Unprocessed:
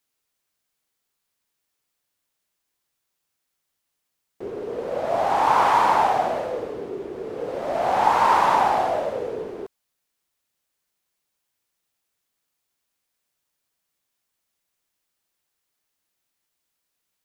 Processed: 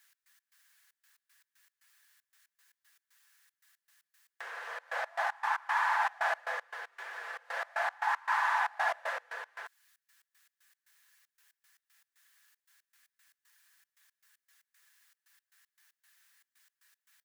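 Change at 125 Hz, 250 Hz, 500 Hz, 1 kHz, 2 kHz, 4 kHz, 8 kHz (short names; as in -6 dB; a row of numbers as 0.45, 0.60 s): under -40 dB, under -40 dB, -19.0 dB, -13.5 dB, -0.5 dB, -9.5 dB, -10.0 dB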